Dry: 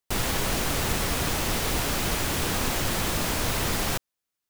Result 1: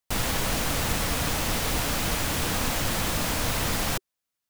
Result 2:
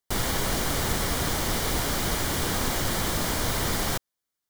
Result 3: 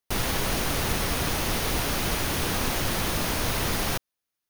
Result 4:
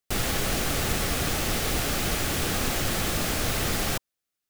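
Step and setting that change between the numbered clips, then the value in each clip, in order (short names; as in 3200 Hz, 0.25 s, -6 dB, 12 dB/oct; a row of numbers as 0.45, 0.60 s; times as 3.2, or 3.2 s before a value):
notch, frequency: 380, 2600, 7600, 970 Hz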